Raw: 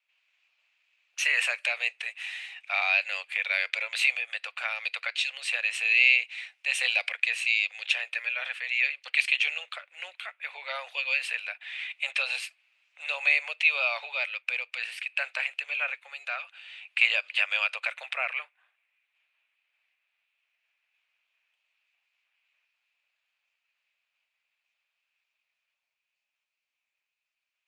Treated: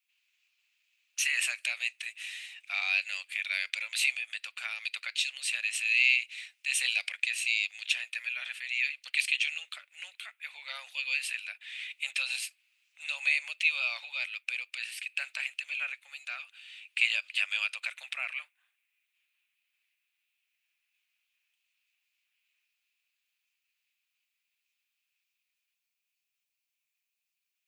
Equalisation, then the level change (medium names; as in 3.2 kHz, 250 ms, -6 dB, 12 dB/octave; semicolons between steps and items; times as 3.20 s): differentiator; +5.0 dB